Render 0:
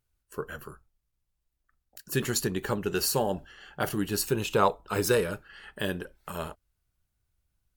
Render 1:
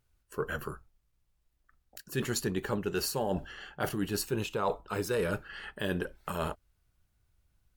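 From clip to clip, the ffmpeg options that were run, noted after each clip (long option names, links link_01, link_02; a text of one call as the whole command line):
ffmpeg -i in.wav -af "highshelf=frequency=5100:gain=-5,areverse,acompressor=threshold=-34dB:ratio=6,areverse,volume=5.5dB" out.wav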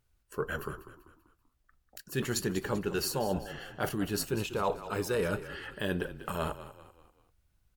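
ffmpeg -i in.wav -filter_complex "[0:a]asplit=5[link_01][link_02][link_03][link_04][link_05];[link_02]adelay=194,afreqshift=-32,volume=-13.5dB[link_06];[link_03]adelay=388,afreqshift=-64,volume=-20.8dB[link_07];[link_04]adelay=582,afreqshift=-96,volume=-28.2dB[link_08];[link_05]adelay=776,afreqshift=-128,volume=-35.5dB[link_09];[link_01][link_06][link_07][link_08][link_09]amix=inputs=5:normalize=0" out.wav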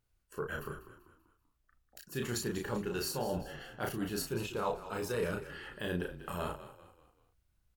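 ffmpeg -i in.wav -filter_complex "[0:a]asplit=2[link_01][link_02];[link_02]adelay=34,volume=-3.5dB[link_03];[link_01][link_03]amix=inputs=2:normalize=0,volume=-5.5dB" out.wav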